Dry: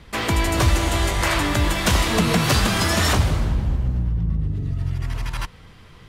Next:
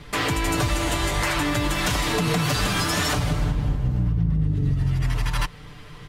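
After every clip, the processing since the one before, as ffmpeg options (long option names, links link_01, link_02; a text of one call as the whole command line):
ffmpeg -i in.wav -af "aecho=1:1:6.8:0.62,alimiter=limit=-16.5dB:level=0:latency=1:release=268,volume=3dB" out.wav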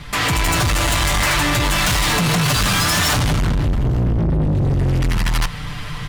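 ffmpeg -i in.wav -af "equalizer=frequency=390:width=1.5:gain=-10.5,dynaudnorm=framelen=190:gausssize=3:maxgain=7dB,asoftclip=type=tanh:threshold=-23.5dB,volume=8.5dB" out.wav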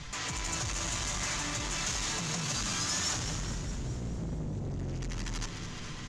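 ffmpeg -i in.wav -filter_complex "[0:a]alimiter=level_in=2dB:limit=-24dB:level=0:latency=1:release=141,volume=-2dB,lowpass=frequency=6600:width_type=q:width=4.6,asplit=2[link_01][link_02];[link_02]asplit=8[link_03][link_04][link_05][link_06][link_07][link_08][link_09][link_10];[link_03]adelay=209,afreqshift=66,volume=-10dB[link_11];[link_04]adelay=418,afreqshift=132,volume=-14dB[link_12];[link_05]adelay=627,afreqshift=198,volume=-18dB[link_13];[link_06]adelay=836,afreqshift=264,volume=-22dB[link_14];[link_07]adelay=1045,afreqshift=330,volume=-26.1dB[link_15];[link_08]adelay=1254,afreqshift=396,volume=-30.1dB[link_16];[link_09]adelay=1463,afreqshift=462,volume=-34.1dB[link_17];[link_10]adelay=1672,afreqshift=528,volume=-38.1dB[link_18];[link_11][link_12][link_13][link_14][link_15][link_16][link_17][link_18]amix=inputs=8:normalize=0[link_19];[link_01][link_19]amix=inputs=2:normalize=0,volume=-8.5dB" out.wav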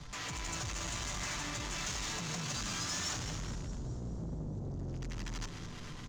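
ffmpeg -i in.wav -filter_complex "[0:a]acrossover=split=150|1500|3700[link_01][link_02][link_03][link_04];[link_03]acrusher=bits=7:mix=0:aa=0.000001[link_05];[link_01][link_02][link_05][link_04]amix=inputs=4:normalize=0,adynamicsmooth=sensitivity=7:basefreq=6900,volume=-4dB" out.wav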